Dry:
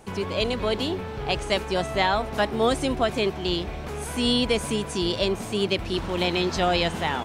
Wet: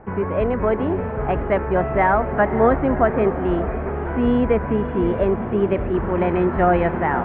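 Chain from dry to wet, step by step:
Butterworth low-pass 1,900 Hz 36 dB per octave
parametric band 66 Hz +3.5 dB 0.33 octaves
on a send: feedback delay with all-pass diffusion 580 ms, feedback 47%, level −11 dB
on the sum: level +6 dB

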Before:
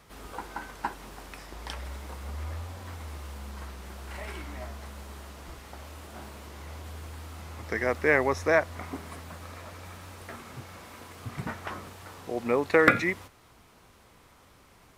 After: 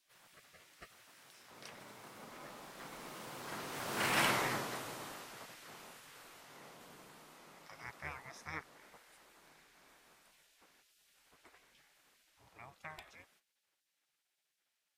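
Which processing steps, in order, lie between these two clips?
source passing by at 0:04.25, 9 m/s, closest 1.8 metres
gate on every frequency bin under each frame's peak −15 dB weak
level +13.5 dB

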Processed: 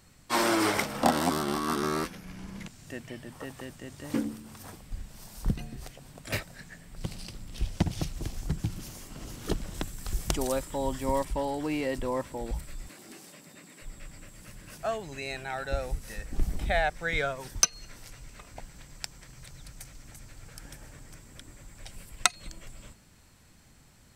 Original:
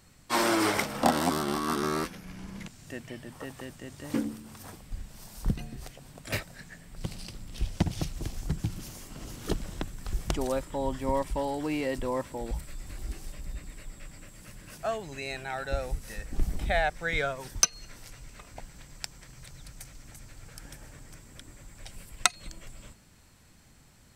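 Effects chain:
0:09.74–0:11.25: high-shelf EQ 4,900 Hz +9 dB
0:12.88–0:13.82: high-pass filter 180 Hz 24 dB per octave

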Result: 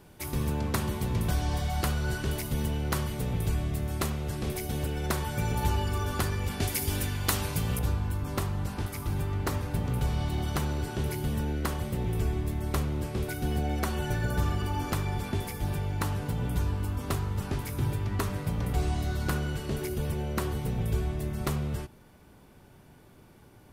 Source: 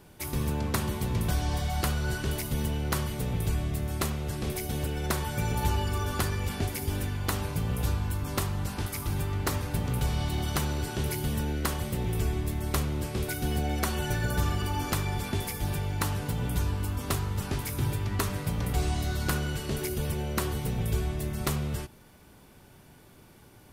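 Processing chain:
high-shelf EQ 2,100 Hz −2 dB, from 0:06.60 +6.5 dB, from 0:07.79 −6 dB

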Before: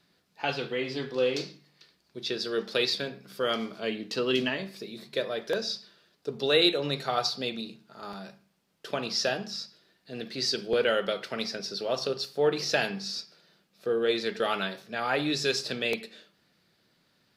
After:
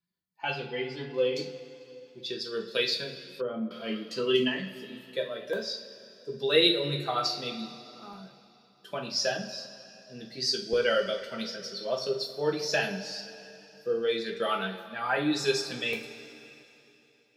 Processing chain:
spectral dynamics exaggerated over time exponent 1.5
coupled-rooms reverb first 0.34 s, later 3.2 s, from −17 dB, DRR 0.5 dB
0:03.24–0:03.71: treble cut that deepens with the level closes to 710 Hz, closed at −30 dBFS

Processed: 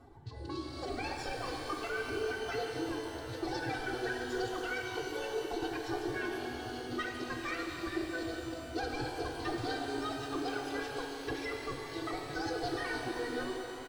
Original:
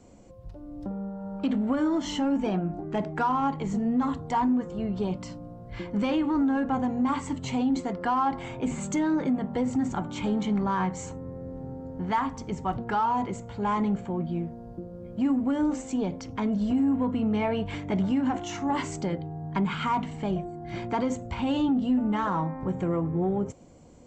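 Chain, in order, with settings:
loose part that buzzes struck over −38 dBFS, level −28 dBFS
reverb reduction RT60 1.6 s
low-pass filter 4,800 Hz 24 dB per octave
low-shelf EQ 100 Hz +6.5 dB
wrong playback speed 45 rpm record played at 78 rpm
high-shelf EQ 2,500 Hz −4 dB
downward compressor 2.5 to 1, threshold −35 dBFS, peak gain reduction 9.5 dB
phase-vocoder pitch shift with formants kept +8.5 semitones
comb filter 2.6 ms, depth 78%
reverb with rising layers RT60 3.3 s, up +12 semitones, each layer −8 dB, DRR 1 dB
level −5.5 dB

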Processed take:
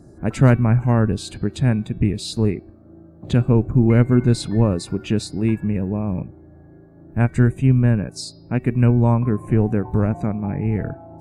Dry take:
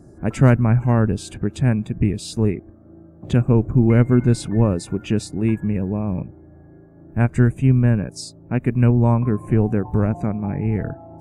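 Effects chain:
parametric band 4,100 Hz +8 dB 0.31 octaves
hum removal 377.9 Hz, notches 14

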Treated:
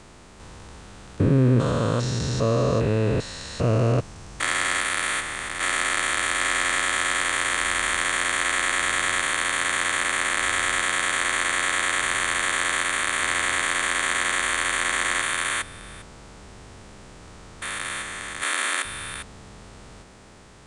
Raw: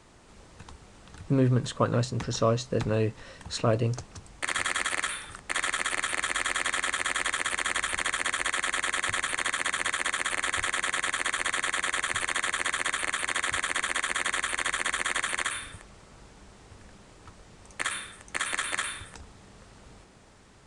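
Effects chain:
spectrum averaged block by block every 400 ms
0:18.43–0:18.85: linear-phase brick-wall high-pass 210 Hz
level +8.5 dB

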